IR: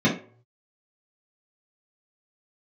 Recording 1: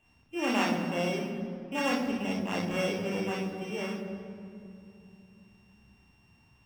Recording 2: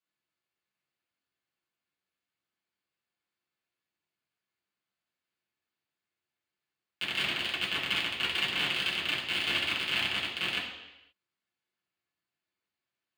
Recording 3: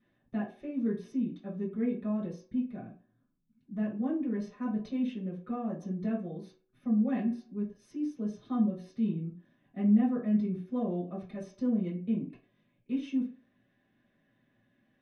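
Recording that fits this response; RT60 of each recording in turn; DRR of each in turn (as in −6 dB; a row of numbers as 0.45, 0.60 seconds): 3; 2.7 s, 0.90 s, non-exponential decay; −2.5, −7.0, −7.5 decibels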